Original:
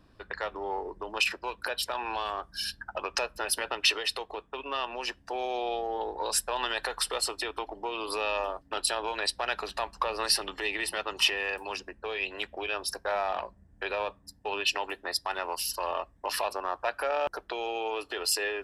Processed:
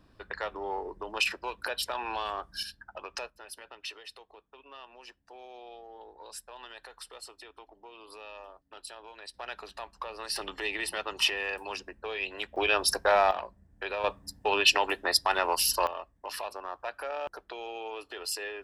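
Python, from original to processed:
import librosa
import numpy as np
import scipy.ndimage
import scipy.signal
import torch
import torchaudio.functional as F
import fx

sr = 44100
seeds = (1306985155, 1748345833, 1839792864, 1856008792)

y = fx.gain(x, sr, db=fx.steps((0.0, -1.0), (2.63, -8.0), (3.3, -16.0), (9.34, -9.0), (10.36, -1.5), (12.56, 7.0), (13.31, -2.0), (14.04, 6.0), (15.87, -6.5)))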